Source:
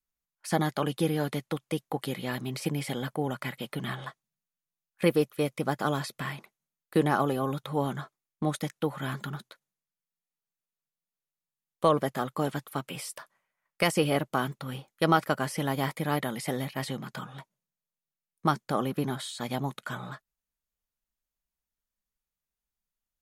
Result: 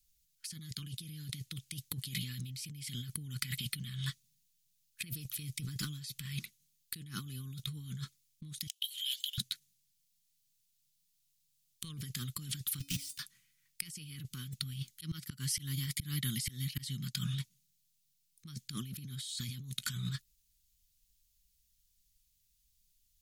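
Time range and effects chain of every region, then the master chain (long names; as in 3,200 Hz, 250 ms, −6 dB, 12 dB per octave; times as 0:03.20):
0:05.42–0:06.25: comb filter 6.7 ms, depth 36% + downward compressor, threshold −26 dBFS
0:08.67–0:09.38: four-pole ladder high-pass 2,900 Hz, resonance 80% + high-shelf EQ 8,600 Hz +10 dB
0:12.79–0:13.19: each half-wave held at its own peak + output level in coarse steps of 17 dB + tuned comb filter 280 Hz, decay 0.38 s, harmonics odd, mix 70%
0:14.74–0:17.15: notch filter 2,500 Hz, Q 15 + volume swells 782 ms
whole clip: Chebyshev band-stop filter 110–4,000 Hz, order 2; compressor whose output falls as the input rises −50 dBFS, ratio −1; level +9 dB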